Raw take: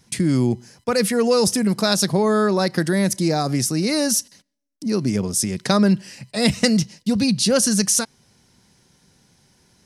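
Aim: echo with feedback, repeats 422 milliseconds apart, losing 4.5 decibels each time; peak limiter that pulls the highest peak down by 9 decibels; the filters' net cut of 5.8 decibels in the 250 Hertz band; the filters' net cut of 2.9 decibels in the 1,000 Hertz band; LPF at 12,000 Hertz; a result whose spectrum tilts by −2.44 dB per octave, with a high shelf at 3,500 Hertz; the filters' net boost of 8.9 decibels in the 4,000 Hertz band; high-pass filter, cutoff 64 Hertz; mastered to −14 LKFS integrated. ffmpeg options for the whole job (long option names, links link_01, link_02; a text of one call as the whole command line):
ffmpeg -i in.wav -af "highpass=64,lowpass=12000,equalizer=frequency=250:width_type=o:gain=-7.5,equalizer=frequency=1000:width_type=o:gain=-4.5,highshelf=frequency=3500:gain=3.5,equalizer=frequency=4000:width_type=o:gain=8.5,alimiter=limit=-6.5dB:level=0:latency=1,aecho=1:1:422|844|1266|1688|2110|2532|2954|3376|3798:0.596|0.357|0.214|0.129|0.0772|0.0463|0.0278|0.0167|0.01,volume=4dB" out.wav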